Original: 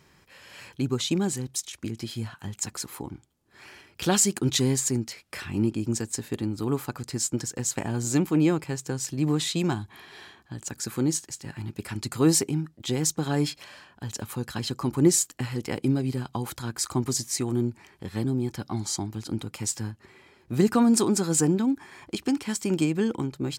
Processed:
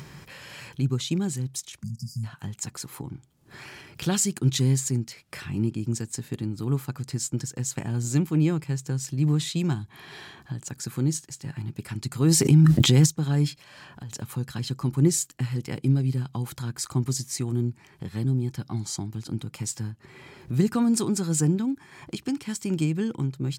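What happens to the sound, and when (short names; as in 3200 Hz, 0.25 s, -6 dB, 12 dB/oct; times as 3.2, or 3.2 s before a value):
1.83–2.23 spectral delete 220–4600 Hz
12.28–13.06 fast leveller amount 100%
13.58–14.12 compressor, threshold -45 dBFS
whole clip: dynamic EQ 690 Hz, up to -4 dB, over -40 dBFS, Q 0.74; upward compressor, threshold -32 dBFS; bell 140 Hz +10 dB 0.67 oct; gain -3 dB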